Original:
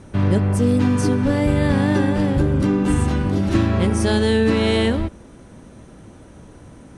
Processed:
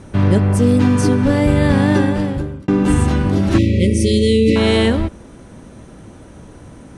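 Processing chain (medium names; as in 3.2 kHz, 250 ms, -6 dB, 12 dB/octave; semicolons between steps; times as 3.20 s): 1.97–2.68 s: fade out; 3.58–4.56 s: brick-wall FIR band-stop 600–1900 Hz; trim +4 dB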